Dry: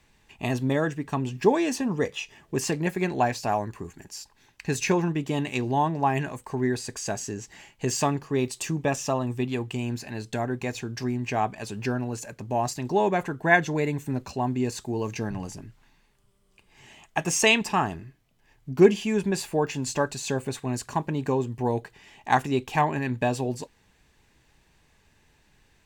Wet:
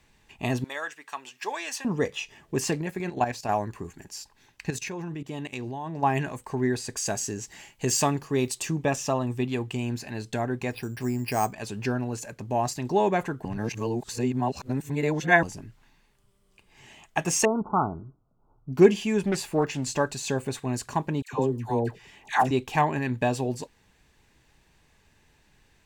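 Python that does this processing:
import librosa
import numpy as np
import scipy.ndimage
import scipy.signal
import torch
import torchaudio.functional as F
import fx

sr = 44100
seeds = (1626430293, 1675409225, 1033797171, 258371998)

y = fx.highpass(x, sr, hz=1100.0, slope=12, at=(0.64, 1.85))
y = fx.level_steps(y, sr, step_db=10, at=(2.81, 3.49))
y = fx.level_steps(y, sr, step_db=17, at=(4.7, 6.03))
y = fx.high_shelf(y, sr, hz=5800.0, db=7.5, at=(6.97, 8.55))
y = fx.resample_bad(y, sr, factor=6, down='filtered', up='hold', at=(10.71, 11.53))
y = fx.brickwall_lowpass(y, sr, high_hz=1500.0, at=(17.45, 18.73))
y = fx.doppler_dist(y, sr, depth_ms=0.32, at=(19.26, 19.94))
y = fx.dispersion(y, sr, late='lows', ms=113.0, hz=920.0, at=(21.22, 22.51))
y = fx.edit(y, sr, fx.reverse_span(start_s=13.45, length_s=1.98), tone=tone)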